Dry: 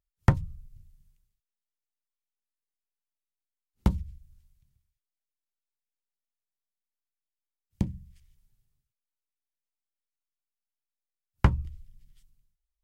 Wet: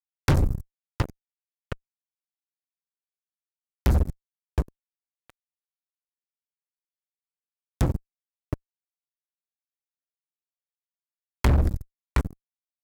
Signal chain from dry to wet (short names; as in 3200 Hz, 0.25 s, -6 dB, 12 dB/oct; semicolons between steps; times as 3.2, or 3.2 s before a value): fixed phaser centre 770 Hz, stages 6; feedback echo 0.717 s, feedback 25%, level -14 dB; fuzz box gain 42 dB, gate -41 dBFS; gain -2.5 dB